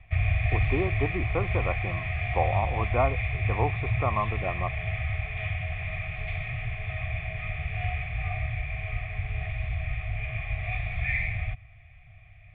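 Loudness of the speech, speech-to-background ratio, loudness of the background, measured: -32.0 LUFS, -1.5 dB, -30.5 LUFS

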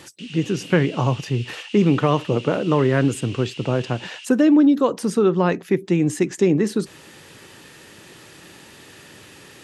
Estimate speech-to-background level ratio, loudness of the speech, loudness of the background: 18.0 dB, -20.0 LUFS, -38.0 LUFS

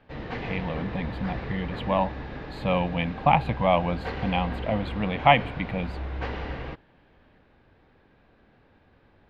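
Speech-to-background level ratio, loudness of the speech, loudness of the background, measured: 9.5 dB, -26.5 LUFS, -36.0 LUFS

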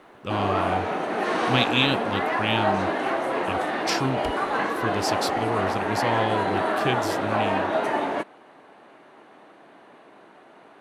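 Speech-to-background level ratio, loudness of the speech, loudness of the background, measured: -3.0 dB, -28.5 LUFS, -25.5 LUFS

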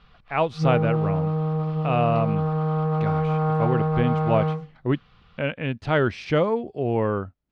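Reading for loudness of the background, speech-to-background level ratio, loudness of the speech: -24.5 LUFS, -1.5 dB, -26.0 LUFS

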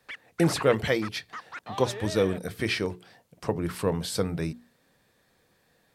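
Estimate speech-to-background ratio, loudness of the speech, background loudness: 12.5 dB, -28.0 LUFS, -40.5 LUFS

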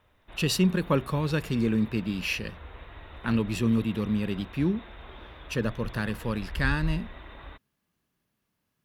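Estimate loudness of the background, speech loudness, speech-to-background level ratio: -43.5 LUFS, -28.5 LUFS, 15.0 dB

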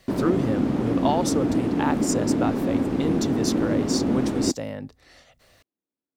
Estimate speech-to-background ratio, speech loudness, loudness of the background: -4.0 dB, -28.5 LUFS, -24.5 LUFS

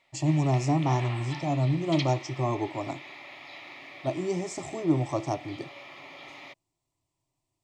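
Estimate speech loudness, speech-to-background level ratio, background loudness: -28.5 LUFS, 13.5 dB, -42.0 LUFS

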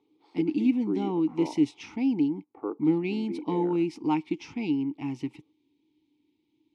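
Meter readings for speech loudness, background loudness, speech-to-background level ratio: -28.5 LUFS, -37.5 LUFS, 9.0 dB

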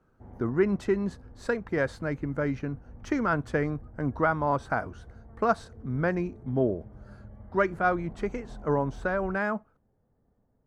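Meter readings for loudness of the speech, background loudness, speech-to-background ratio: -29.5 LUFS, -49.0 LUFS, 19.5 dB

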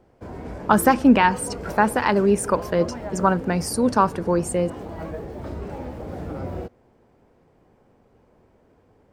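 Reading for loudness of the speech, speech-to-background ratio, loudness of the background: -20.5 LUFS, 14.0 dB, -34.5 LUFS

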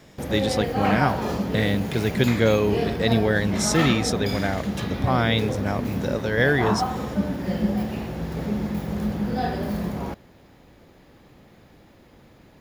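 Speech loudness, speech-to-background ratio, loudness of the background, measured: -24.0 LUFS, 3.5 dB, -27.5 LUFS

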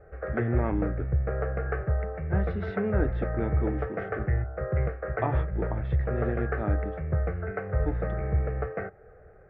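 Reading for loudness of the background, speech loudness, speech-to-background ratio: -30.5 LUFS, -34.5 LUFS, -4.0 dB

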